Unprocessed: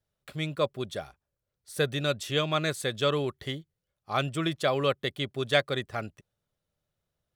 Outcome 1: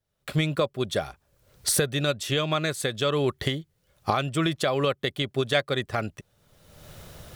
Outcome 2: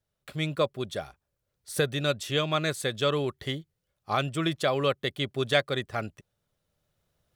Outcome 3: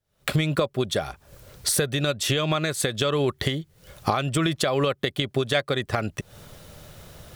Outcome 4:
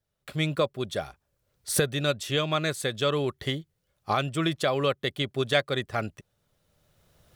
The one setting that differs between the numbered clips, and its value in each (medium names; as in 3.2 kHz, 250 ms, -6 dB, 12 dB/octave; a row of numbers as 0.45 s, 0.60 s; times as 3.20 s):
recorder AGC, rising by: 36 dB/s, 5.2 dB/s, 90 dB/s, 14 dB/s